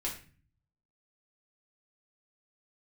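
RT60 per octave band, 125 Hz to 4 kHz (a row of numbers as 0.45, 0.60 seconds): 0.95, 0.70, 0.40, 0.35, 0.40, 0.35 seconds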